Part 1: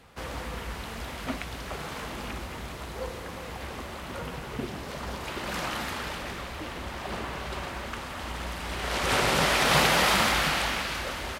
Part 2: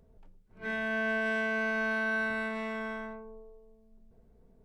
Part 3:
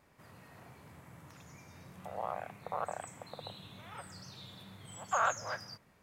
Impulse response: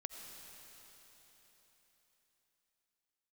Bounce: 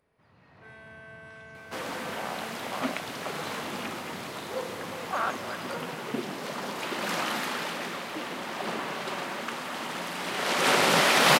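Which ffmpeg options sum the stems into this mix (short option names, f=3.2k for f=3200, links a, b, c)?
-filter_complex "[0:a]highpass=f=170:w=0.5412,highpass=f=170:w=1.3066,adelay=1550,volume=2.5dB[a];[1:a]highpass=380,equalizer=f=9.8k:t=o:w=0.44:g=14.5,acompressor=threshold=-50dB:ratio=1.5,volume=-9dB[b];[2:a]lowpass=f=4.8k:w=0.5412,lowpass=f=4.8k:w=1.3066,dynaudnorm=f=120:g=7:m=8.5dB,volume=-10.5dB,asplit=2[c][d];[d]volume=-6dB[e];[3:a]atrim=start_sample=2205[f];[e][f]afir=irnorm=-1:irlink=0[g];[a][b][c][g]amix=inputs=4:normalize=0"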